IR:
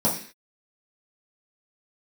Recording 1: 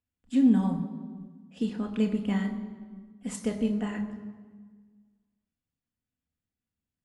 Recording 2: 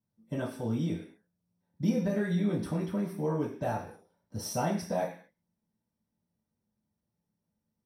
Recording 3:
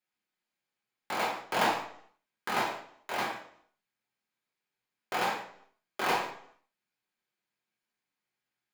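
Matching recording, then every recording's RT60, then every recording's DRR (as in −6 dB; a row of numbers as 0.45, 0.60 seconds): 2; 1.5, 0.45, 0.65 seconds; 3.0, −7.5, −4.5 decibels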